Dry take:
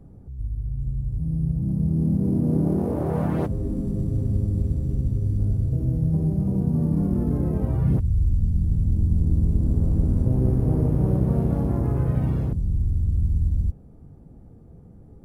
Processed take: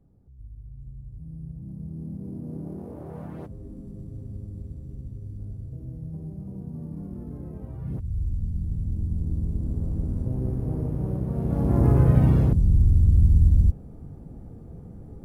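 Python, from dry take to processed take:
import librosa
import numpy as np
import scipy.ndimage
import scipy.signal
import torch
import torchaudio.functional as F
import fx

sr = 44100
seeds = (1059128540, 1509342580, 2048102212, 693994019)

y = fx.gain(x, sr, db=fx.line((7.77, -14.0), (8.17, -7.0), (11.33, -7.0), (11.85, 5.0)))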